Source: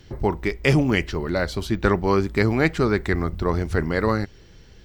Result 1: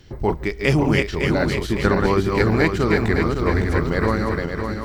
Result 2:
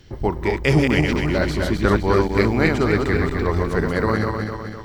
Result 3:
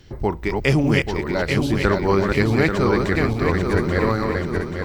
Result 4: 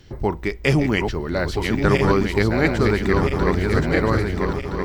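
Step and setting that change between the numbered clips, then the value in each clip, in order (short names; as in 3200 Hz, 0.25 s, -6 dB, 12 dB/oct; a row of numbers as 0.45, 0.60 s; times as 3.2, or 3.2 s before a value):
regenerating reverse delay, time: 0.279, 0.127, 0.417, 0.66 s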